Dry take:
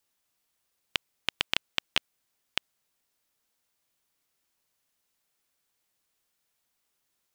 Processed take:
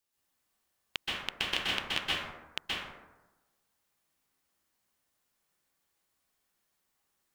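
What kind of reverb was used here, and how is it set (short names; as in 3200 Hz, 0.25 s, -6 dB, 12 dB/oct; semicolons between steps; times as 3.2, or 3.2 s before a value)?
plate-style reverb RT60 1.1 s, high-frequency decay 0.4×, pre-delay 0.115 s, DRR -7.5 dB; gain -7 dB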